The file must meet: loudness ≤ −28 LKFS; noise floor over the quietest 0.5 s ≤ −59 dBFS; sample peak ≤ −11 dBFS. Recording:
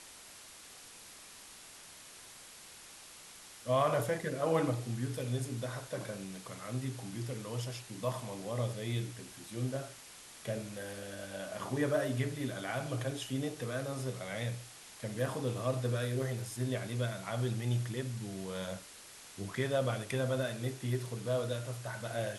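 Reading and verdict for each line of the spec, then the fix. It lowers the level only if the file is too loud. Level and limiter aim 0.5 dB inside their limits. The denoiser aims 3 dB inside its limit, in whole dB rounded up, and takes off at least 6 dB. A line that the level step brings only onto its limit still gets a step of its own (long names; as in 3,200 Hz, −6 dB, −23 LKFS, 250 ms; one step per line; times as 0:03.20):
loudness −36.5 LKFS: in spec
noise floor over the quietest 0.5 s −53 dBFS: out of spec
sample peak −17.5 dBFS: in spec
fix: broadband denoise 9 dB, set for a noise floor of −53 dBFS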